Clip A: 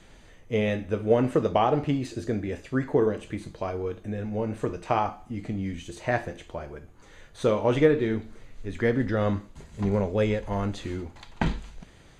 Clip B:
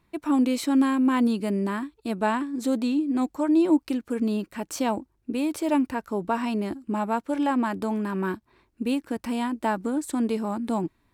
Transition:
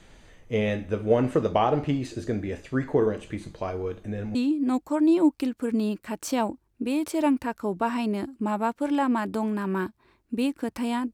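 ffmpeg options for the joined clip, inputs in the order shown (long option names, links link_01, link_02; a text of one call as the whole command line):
ffmpeg -i cue0.wav -i cue1.wav -filter_complex "[0:a]apad=whole_dur=11.13,atrim=end=11.13,atrim=end=4.352[link_01];[1:a]atrim=start=2.828:end=9.61[link_02];[link_01][link_02]acrossfade=duration=0.004:curve1=hsin:curve2=hsin" out.wav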